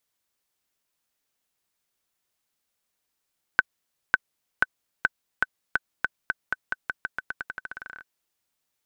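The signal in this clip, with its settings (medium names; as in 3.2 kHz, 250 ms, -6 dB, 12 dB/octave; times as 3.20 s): bouncing ball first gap 0.55 s, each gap 0.88, 1.52 kHz, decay 30 ms -3.5 dBFS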